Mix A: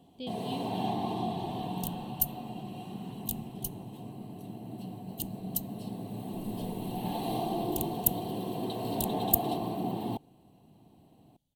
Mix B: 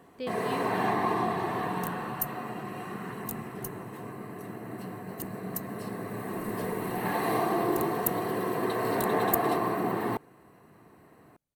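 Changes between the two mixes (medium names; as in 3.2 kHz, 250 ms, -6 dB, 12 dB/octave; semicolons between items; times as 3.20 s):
second sound -9.5 dB; master: remove FFT filter 260 Hz 0 dB, 440 Hz -10 dB, 810 Hz -2 dB, 1.2 kHz -22 dB, 1.9 kHz -24 dB, 3.2 kHz +5 dB, 5.3 kHz -6 dB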